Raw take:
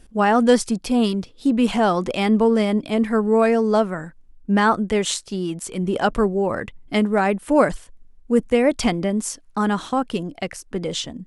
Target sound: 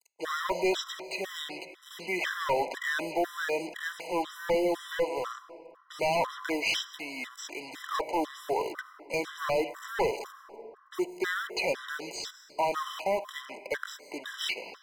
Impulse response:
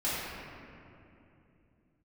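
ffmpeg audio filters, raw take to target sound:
-filter_complex "[0:a]acrusher=bits=5:mix=0:aa=0.5,aemphasis=mode=production:type=75kf,asetrate=33516,aresample=44100,highpass=f=450:w=0.5412,highpass=f=450:w=1.3066,acontrast=80,asplit=2[s0][s1];[1:a]atrim=start_sample=2205,adelay=16[s2];[s1][s2]afir=irnorm=-1:irlink=0,volume=0.0631[s3];[s0][s3]amix=inputs=2:normalize=0,acrossover=split=3600[s4][s5];[s5]acompressor=threshold=0.0112:ratio=4:attack=1:release=60[s6];[s4][s6]amix=inputs=2:normalize=0,highshelf=f=8000:g=-6.5,volume=5.62,asoftclip=hard,volume=0.178,afftfilt=real='re*gt(sin(2*PI*2*pts/sr)*(1-2*mod(floor(b*sr/1024/1000),2)),0)':imag='im*gt(sin(2*PI*2*pts/sr)*(1-2*mod(floor(b*sr/1024/1000),2)),0)':win_size=1024:overlap=0.75,volume=0.447"

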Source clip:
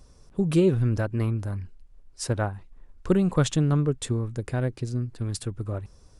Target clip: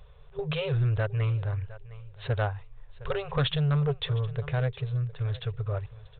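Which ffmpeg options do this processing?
-af "aemphasis=mode=production:type=75kf,aecho=1:1:711|1422:0.1|0.015,afftfilt=real='re*(1-between(b*sr/4096,160,390))':imag='im*(1-between(b*sr/4096,160,390))':win_size=4096:overlap=0.75,aresample=8000,asoftclip=type=tanh:threshold=0.0891,aresample=44100,volume=1.19"

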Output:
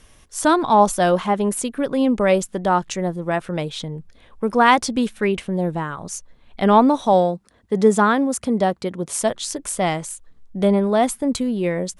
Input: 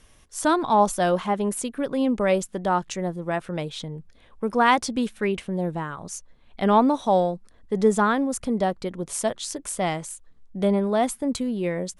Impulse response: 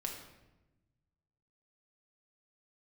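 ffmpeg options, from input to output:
-filter_complex "[0:a]asettb=1/sr,asplit=3[s0][s1][s2];[s0]atrim=end=7.134[s3];[s1]atrim=start=7.13:end=9.22,asetpts=PTS-STARTPTS,afade=t=in:d=0.004:c=qsin,afade=t=out:st=2.086:d=0.004:c=qsin,highpass=74[s4];[s2]atrim=start=9.216[s5];[s3][s4]acrossfade=d=0.004:c1=hsin:c2=qsin[s6];[s6][s5]acrossfade=d=0.004:c1=qsin:c2=hsin,volume=1.68"

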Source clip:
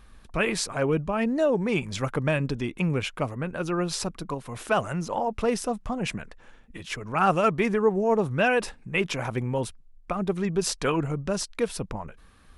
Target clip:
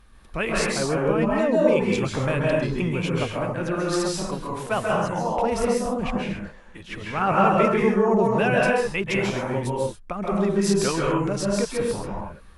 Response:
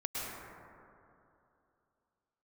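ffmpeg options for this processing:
-filter_complex "[0:a]asettb=1/sr,asplit=3[s0][s1][s2];[s0]atrim=end=5.974[s3];[s1]atrim=start=5.97:end=7.49,asetpts=PTS-STARTPTS,afade=t=in:d=0.004:c=qsin,afade=t=out:st=1.516:d=0.004:c=qsin,acrossover=split=3800[s4][s5];[s5]acompressor=threshold=0.00282:ratio=4:attack=1:release=60[s6];[s4][s6]amix=inputs=2:normalize=0[s7];[s2]atrim=start=7.486[s8];[s3][s7]acrossfade=d=0.004:c1=hsin:c2=qsin[s9];[s9][s8]acrossfade=d=0.004:c1=qsin:c2=hsin[s10];[1:a]atrim=start_sample=2205,afade=t=out:st=0.28:d=0.01,atrim=end_sample=12789,asetrate=34839,aresample=44100[s11];[s10][s11]afir=irnorm=-1:irlink=0"

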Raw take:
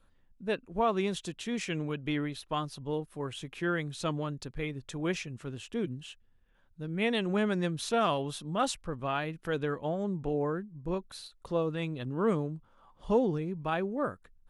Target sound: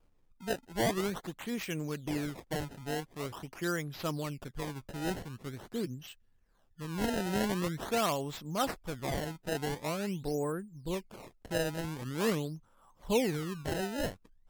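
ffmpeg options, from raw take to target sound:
-af "acrusher=samples=22:mix=1:aa=0.000001:lfo=1:lforange=35.2:lforate=0.45,volume=0.794" -ar 44100 -c:a libmp3lame -b:a 80k

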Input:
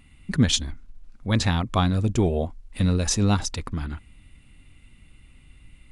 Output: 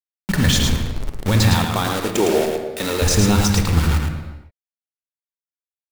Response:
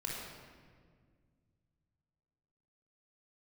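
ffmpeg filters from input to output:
-filter_complex "[0:a]asettb=1/sr,asplit=3[s0][s1][s2];[s0]atrim=end=1.534[s3];[s1]atrim=start=1.53:end=3.02,asetpts=PTS-STARTPTS,afade=t=in:d=0.004:c=qsin,afade=t=out:st=1.486:d=0.004:c=qsin,highpass=410[s4];[s2]atrim=start=3.016[s5];[s3][s4]acrossfade=d=0.004:c1=hsin:c2=qsin[s6];[s6][s5]acrossfade=d=0.004:c1=qsin:c2=hsin,alimiter=limit=0.112:level=0:latency=1:release=40,acrusher=bits=5:mix=0:aa=0.000001,aecho=1:1:109:0.562,asplit=2[s7][s8];[1:a]atrim=start_sample=2205,afade=t=out:st=0.44:d=0.01,atrim=end_sample=19845,asetrate=41013,aresample=44100[s9];[s8][s9]afir=irnorm=-1:irlink=0,volume=0.562[s10];[s7][s10]amix=inputs=2:normalize=0,volume=2.24"

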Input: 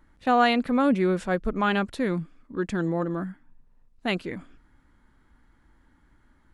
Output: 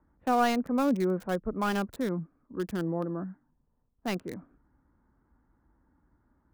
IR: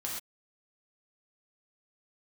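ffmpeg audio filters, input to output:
-filter_complex "[0:a]highpass=45,acrossover=split=270|680|1400[s0][s1][s2][s3];[s3]acrusher=bits=3:dc=4:mix=0:aa=0.000001[s4];[s0][s1][s2][s4]amix=inputs=4:normalize=0,volume=0.596"

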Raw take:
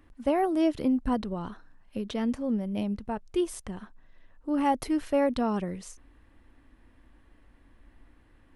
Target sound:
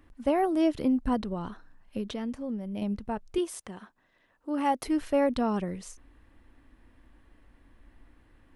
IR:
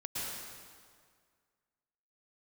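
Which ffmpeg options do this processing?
-filter_complex "[0:a]asettb=1/sr,asplit=3[s0][s1][s2];[s0]atrim=end=2.084[s3];[s1]atrim=start=2.08:end=2.82,asetpts=PTS-STARTPTS,afade=t=in:d=0.004:c=qsin,afade=t=out:st=0.736:d=0.004:c=qsin,acompressor=threshold=0.0178:ratio=2[s4];[s2]atrim=start=2.816[s5];[s3][s4]acrossfade=d=0.004:c1=hsin:c2=qsin[s6];[s6][s5]acrossfade=d=0.004:c1=qsin:c2=hsin,asettb=1/sr,asplit=3[s7][s8][s9];[s7]atrim=end=3.384[s10];[s8]atrim=start=3.38:end=4.85,asetpts=PTS-STARTPTS,afade=t=in:d=0.004:c=qsin,afade=t=out:st=1.466:d=0.004:c=qsin,highpass=f=310:p=1[s11];[s9]atrim=start=4.846[s12];[s10][s11]acrossfade=d=0.004:c1=hsin:c2=qsin[s13];[s13][s12]acrossfade=d=0.004:c1=qsin:c2=hsin"

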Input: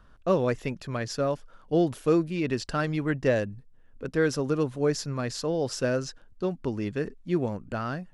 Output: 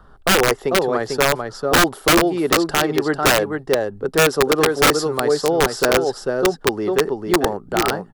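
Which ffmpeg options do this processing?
-filter_complex "[0:a]equalizer=f=160:t=o:w=0.33:g=4,equalizer=f=400:t=o:w=0.33:g=10,equalizer=f=800:t=o:w=0.33:g=11,equalizer=f=1250:t=o:w=0.33:g=5,equalizer=f=2500:t=o:w=0.33:g=-12,equalizer=f=6300:t=o:w=0.33:g=-7,aecho=1:1:446:0.562,acrossover=split=270[s0][s1];[s0]acompressor=threshold=0.00891:ratio=8[s2];[s2][s1]amix=inputs=2:normalize=0,aeval=exprs='(mod(5.62*val(0)+1,2)-1)/5.62':c=same,asettb=1/sr,asplit=3[s3][s4][s5];[s3]atrim=end=4.914[s6];[s4]atrim=start=4.91:end=5.34,asetpts=PTS-STARTPTS,afade=t=in:d=0.004:c=qsin,afade=t=out:st=0.426:d=0.004:c=qsin,highshelf=f=4300:g=5.5[s7];[s5]atrim=start=5.336[s8];[s6][s7]acrossfade=d=0.004:c1=hsin:c2=qsin[s9];[s9][s8]acrossfade=d=0.004:c1=qsin:c2=hsin,volume=2.24"

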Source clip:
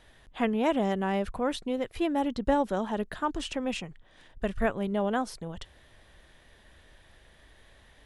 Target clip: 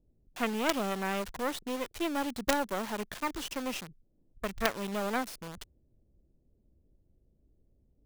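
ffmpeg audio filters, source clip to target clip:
-filter_complex "[0:a]acrossover=split=340[s0][s1];[s1]acrusher=bits=4:dc=4:mix=0:aa=0.000001[s2];[s0][s2]amix=inputs=2:normalize=0,lowshelf=f=290:g=-11,volume=1.26"

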